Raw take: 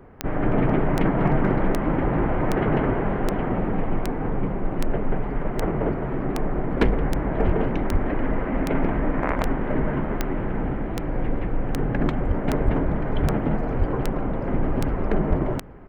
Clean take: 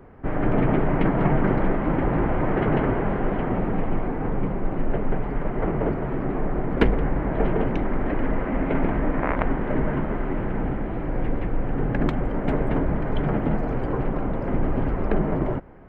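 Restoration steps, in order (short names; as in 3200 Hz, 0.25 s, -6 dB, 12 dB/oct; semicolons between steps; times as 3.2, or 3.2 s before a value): clip repair -10 dBFS; de-click; de-plosive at 7.45/7.91/12.27/12.64/13.21/13.78/15.29; inverse comb 0.826 s -22 dB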